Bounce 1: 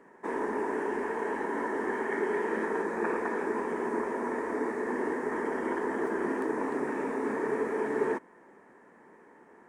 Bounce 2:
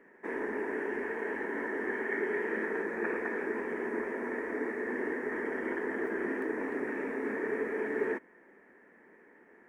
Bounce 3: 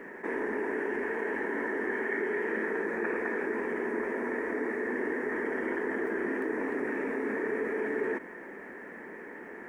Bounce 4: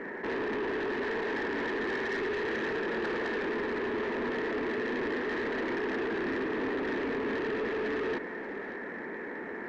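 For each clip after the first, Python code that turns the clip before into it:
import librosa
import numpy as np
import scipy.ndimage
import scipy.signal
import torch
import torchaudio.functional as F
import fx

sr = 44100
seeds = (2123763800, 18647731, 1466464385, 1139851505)

y1 = fx.graphic_eq(x, sr, hz=(125, 1000, 2000, 4000, 8000), db=(-8, -9, 8, -7, -10))
y1 = y1 * librosa.db_to_amplitude(-1.5)
y2 = fx.env_flatten(y1, sr, amount_pct=50)
y2 = y2 * librosa.db_to_amplitude(-1.0)
y3 = 10.0 ** (-35.5 / 20.0) * np.tanh(y2 / 10.0 ** (-35.5 / 20.0))
y3 = fx.air_absorb(y3, sr, metres=120.0)
y3 = y3 + 10.0 ** (-14.5 / 20.0) * np.pad(y3, (int(584 * sr / 1000.0), 0))[:len(y3)]
y3 = y3 * librosa.db_to_amplitude(6.5)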